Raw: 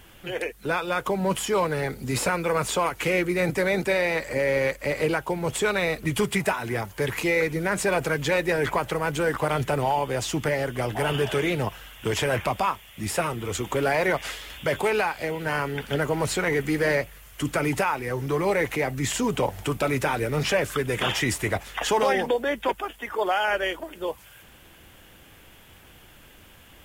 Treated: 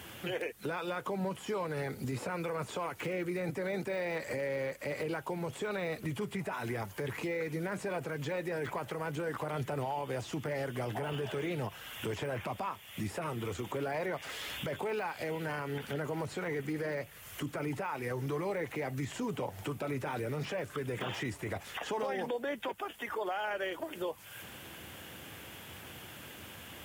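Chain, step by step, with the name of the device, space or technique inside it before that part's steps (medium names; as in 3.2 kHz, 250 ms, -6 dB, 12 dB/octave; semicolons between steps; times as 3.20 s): podcast mastering chain (high-pass 82 Hz 24 dB/octave; de-esser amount 95%; compression 2.5:1, threshold -41 dBFS, peak gain reduction 14.5 dB; peak limiter -30.5 dBFS, peak gain reduction 5.5 dB; trim +4 dB; MP3 128 kbps 44.1 kHz)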